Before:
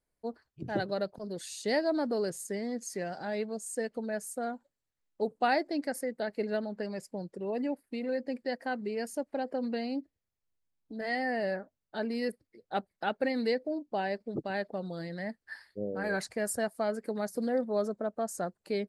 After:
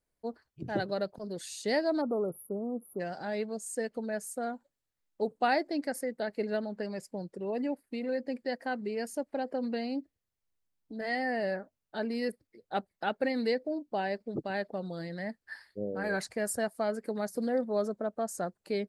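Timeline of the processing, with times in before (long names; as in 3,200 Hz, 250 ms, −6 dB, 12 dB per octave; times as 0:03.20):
0:02.01–0:03.00: time-frequency box erased 1,400–10,000 Hz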